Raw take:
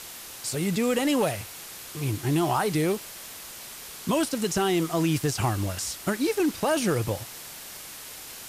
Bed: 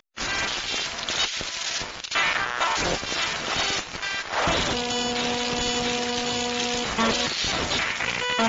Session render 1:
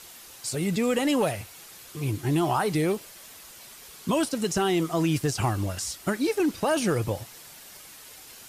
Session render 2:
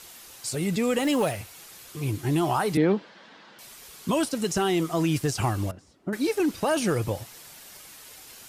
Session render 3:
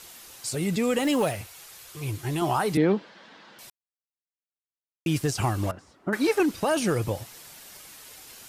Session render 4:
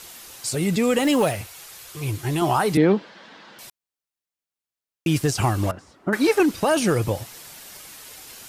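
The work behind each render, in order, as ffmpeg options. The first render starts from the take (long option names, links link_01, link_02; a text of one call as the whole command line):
ffmpeg -i in.wav -af "afftdn=noise_reduction=7:noise_floor=-42" out.wav
ffmpeg -i in.wav -filter_complex "[0:a]asettb=1/sr,asplit=3[link_01][link_02][link_03];[link_01]atrim=end=0.984[link_04];[link_02]atrim=start=0.98:end=1.4,asetpts=PTS-STARTPTS,afade=type=in:duration=0.004:curve=qsin,afade=type=out:start_time=0.416:duration=0.004:curve=qsin,acrusher=bits=7:mode=log:mix=0:aa=0.000001[link_05];[link_03]atrim=start=1.396[link_06];[link_04][link_05]acrossfade=duration=0.004:curve1=hsin:curve2=qsin[link_07];[link_07][link_06]acrossfade=duration=0.004:curve1=qsin:curve2=hsin,asettb=1/sr,asplit=3[link_08][link_09][link_10];[link_08]atrim=end=2.774[link_11];[link_09]atrim=start=2.77:end=3.59,asetpts=PTS-STARTPTS,afade=type=in:duration=0.004:curve=qsin,afade=type=out:start_time=0.816:duration=0.004:curve=qsin,highpass=frequency=140:width=0.5412,highpass=frequency=140:width=1.3066,equalizer=frequency=200:width_type=q:width=4:gain=8,equalizer=frequency=290:width_type=q:width=4:gain=6,equalizer=frequency=500:width_type=q:width=4:gain=4,equalizer=frequency=900:width_type=q:width=4:gain=6,equalizer=frequency=1600:width_type=q:width=4:gain=6,equalizer=frequency=2500:width_type=q:width=4:gain=-4,lowpass=frequency=4000:width=0.5412,lowpass=frequency=4000:width=1.3066[link_12];[link_10]atrim=start=3.586[link_13];[link_11][link_12]acrossfade=duration=0.004:curve1=hsin:curve2=qsin[link_14];[link_14][link_13]acrossfade=duration=0.004:curve1=qsin:curve2=hsin,asettb=1/sr,asplit=3[link_15][link_16][link_17];[link_15]atrim=end=5.714[link_18];[link_16]atrim=start=5.71:end=6.13,asetpts=PTS-STARTPTS,afade=type=in:duration=0.004:curve=qsin,afade=type=out:start_time=0.416:duration=0.004:curve=qsin,bandpass=frequency=270:width_type=q:width=1.2[link_19];[link_17]atrim=start=6.126[link_20];[link_18][link_19]acrossfade=duration=0.004:curve1=hsin:curve2=qsin[link_21];[link_21][link_20]acrossfade=duration=0.004:curve1=qsin:curve2=hsin" out.wav
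ffmpeg -i in.wav -filter_complex "[0:a]asettb=1/sr,asplit=3[link_01][link_02][link_03];[link_01]atrim=end=1.474[link_04];[link_02]atrim=start=1.47:end=2.42,asetpts=PTS-STARTPTS,afade=type=in:duration=0.004:curve=qsin,afade=type=out:start_time=0.946:duration=0.004:curve=qsin,equalizer=frequency=240:width_type=o:width=1.1:gain=-10[link_05];[link_03]atrim=start=2.416[link_06];[link_04][link_05]acrossfade=duration=0.004:curve1=hsin:curve2=qsin[link_07];[link_07][link_06]acrossfade=duration=0.004:curve1=qsin:curve2=hsin,asettb=1/sr,asplit=3[link_08][link_09][link_10];[link_08]atrim=end=5.634[link_11];[link_09]atrim=start=5.63:end=6.43,asetpts=PTS-STARTPTS,afade=type=in:duration=0.004:curve=qsin,afade=type=out:start_time=0.796:duration=0.004:curve=qsin,equalizer=frequency=1200:width_type=o:width=2.1:gain=9[link_12];[link_10]atrim=start=6.426[link_13];[link_11][link_12]acrossfade=duration=0.004:curve1=hsin:curve2=qsin[link_14];[link_14][link_13]acrossfade=duration=0.004:curve1=qsin:curve2=hsin,asplit=3[link_15][link_16][link_17];[link_15]atrim=end=3.7,asetpts=PTS-STARTPTS,afade=type=out:start_time=3.696:duration=0.004:curve=hsin[link_18];[link_16]atrim=start=3.7:end=5.06,asetpts=PTS-STARTPTS,volume=0[link_19];[link_17]atrim=start=5.06,asetpts=PTS-STARTPTS,afade=type=in:duration=0.004:curve=hsin[link_20];[link_18][link_19][link_20]concat=n=3:v=0:a=1" out.wav
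ffmpeg -i in.wav -af "volume=4.5dB" out.wav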